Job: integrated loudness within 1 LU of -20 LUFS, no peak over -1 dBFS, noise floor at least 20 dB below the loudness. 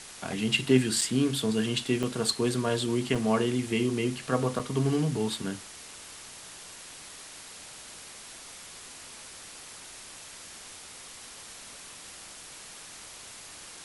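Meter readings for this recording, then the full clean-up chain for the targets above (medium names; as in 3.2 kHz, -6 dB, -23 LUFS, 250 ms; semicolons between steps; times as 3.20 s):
dropouts 4; longest dropout 5.0 ms; noise floor -46 dBFS; noise floor target -48 dBFS; loudness -27.5 LUFS; peak level -9.0 dBFS; loudness target -20.0 LUFS
-> interpolate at 1.01/2.03/3.15/4.59 s, 5 ms; noise reduction 6 dB, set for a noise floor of -46 dBFS; trim +7.5 dB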